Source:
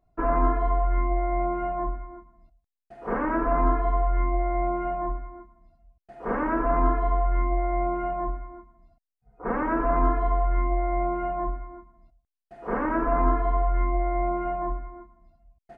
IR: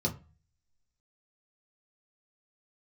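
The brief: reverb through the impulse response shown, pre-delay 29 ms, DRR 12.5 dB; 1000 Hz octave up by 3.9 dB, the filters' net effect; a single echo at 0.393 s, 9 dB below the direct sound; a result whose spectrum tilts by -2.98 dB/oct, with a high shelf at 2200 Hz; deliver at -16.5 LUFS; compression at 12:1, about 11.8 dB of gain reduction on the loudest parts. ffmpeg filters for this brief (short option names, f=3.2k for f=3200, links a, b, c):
-filter_complex "[0:a]equalizer=f=1k:t=o:g=4,highshelf=f=2.2k:g=6,acompressor=threshold=-27dB:ratio=12,aecho=1:1:393:0.355,asplit=2[a][b];[1:a]atrim=start_sample=2205,adelay=29[c];[b][c]afir=irnorm=-1:irlink=0,volume=-18dB[d];[a][d]amix=inputs=2:normalize=0,volume=15dB"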